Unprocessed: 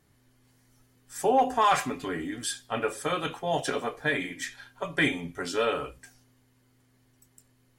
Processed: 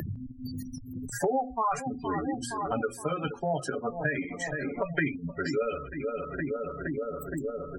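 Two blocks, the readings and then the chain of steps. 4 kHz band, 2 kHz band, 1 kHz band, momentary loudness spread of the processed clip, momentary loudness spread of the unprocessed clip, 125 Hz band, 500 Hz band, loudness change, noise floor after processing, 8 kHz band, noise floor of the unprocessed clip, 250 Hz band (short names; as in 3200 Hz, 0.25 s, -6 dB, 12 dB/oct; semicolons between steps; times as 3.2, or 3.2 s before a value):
-11.0 dB, -3.0 dB, -4.0 dB, 9 LU, 12 LU, +5.0 dB, -0.5 dB, -4.0 dB, -44 dBFS, -4.5 dB, -66 dBFS, +1.5 dB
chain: per-bin expansion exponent 1.5; dynamic EQ 3100 Hz, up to -5 dB, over -48 dBFS, Q 1.6; darkening echo 0.468 s, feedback 55%, low-pass 2200 Hz, level -14.5 dB; in parallel at +1 dB: upward compressor, threshold -34 dBFS; on the sum: low shelf 230 Hz +8 dB; notches 60/120/180/240 Hz; spectral gate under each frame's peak -20 dB strong; tremolo saw up 6.4 Hz, depth 35%; Butterworth band-stop 3500 Hz, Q 7.4; three-band squash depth 100%; gain -4 dB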